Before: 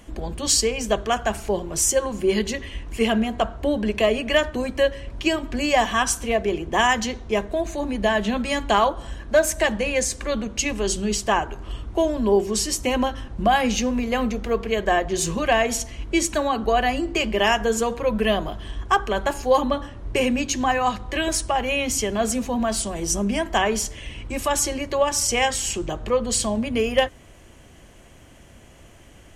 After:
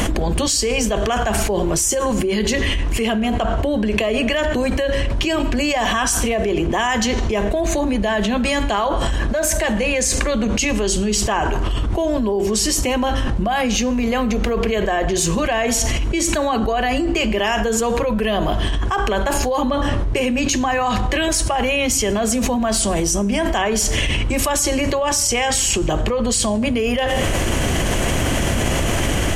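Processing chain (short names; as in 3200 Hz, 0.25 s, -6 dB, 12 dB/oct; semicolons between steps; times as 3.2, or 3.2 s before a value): Schroeder reverb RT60 0.65 s, combs from 26 ms, DRR 20 dB; fast leveller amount 100%; gain -6 dB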